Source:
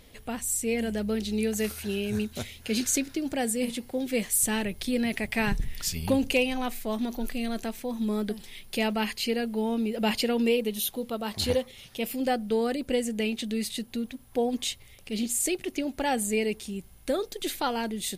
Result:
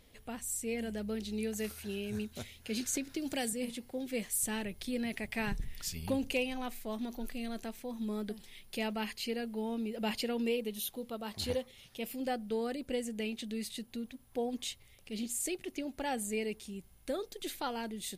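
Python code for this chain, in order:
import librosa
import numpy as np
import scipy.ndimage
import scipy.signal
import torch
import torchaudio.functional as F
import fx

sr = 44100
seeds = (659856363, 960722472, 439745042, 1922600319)

y = fx.band_squash(x, sr, depth_pct=100, at=(2.93, 3.53))
y = F.gain(torch.from_numpy(y), -8.5).numpy()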